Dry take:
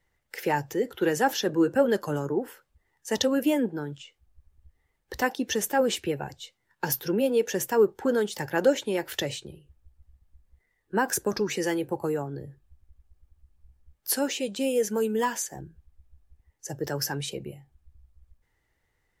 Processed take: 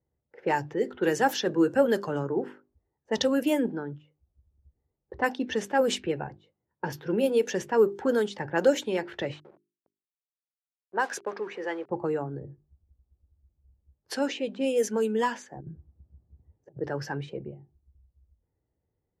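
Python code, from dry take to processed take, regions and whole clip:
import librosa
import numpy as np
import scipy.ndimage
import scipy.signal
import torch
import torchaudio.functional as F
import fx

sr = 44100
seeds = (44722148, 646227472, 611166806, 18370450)

y = fx.chain(x, sr, fx.delta_hold(step_db=-41.0),
    fx.highpass(hz=510.0, slope=12), at=(9.32, 11.9))
y = fx.chain(y, sr, fx.highpass(hz=110.0, slope=12),
    fx.low_shelf(hz=260.0, db=10.5),
    fx.over_compress(threshold_db=-41.0, ratio=-0.5), at=(15.61, 16.81))
y = fx.env_lowpass(y, sr, base_hz=470.0, full_db=-19.5)
y = scipy.signal.sosfilt(scipy.signal.butter(2, 65.0, 'highpass', fs=sr, output='sos'), y)
y = fx.hum_notches(y, sr, base_hz=50, count=8)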